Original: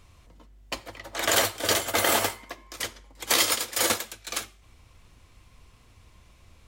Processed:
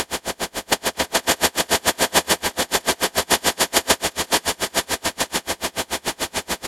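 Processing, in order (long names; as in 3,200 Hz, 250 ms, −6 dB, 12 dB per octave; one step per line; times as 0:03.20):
compressor on every frequency bin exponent 0.2
phase-vocoder pitch shift with formants kept −4.5 semitones
low-shelf EQ 470 Hz +7 dB
single-tap delay 935 ms −4.5 dB
surface crackle 16 per second −28 dBFS
low-shelf EQ 180 Hz −8 dB
tremolo with a sine in dB 6.9 Hz, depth 35 dB
level +3.5 dB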